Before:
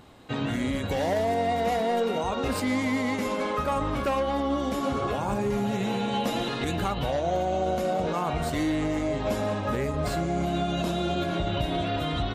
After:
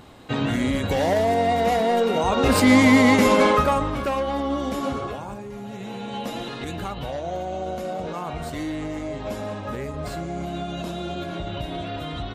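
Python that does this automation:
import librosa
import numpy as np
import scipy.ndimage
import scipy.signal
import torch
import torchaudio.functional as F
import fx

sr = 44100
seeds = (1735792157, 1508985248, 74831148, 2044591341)

y = fx.gain(x, sr, db=fx.line((2.09, 5.0), (2.73, 12.0), (3.47, 12.0), (3.92, 1.5), (4.88, 1.5), (5.47, -10.0), (6.25, -3.0)))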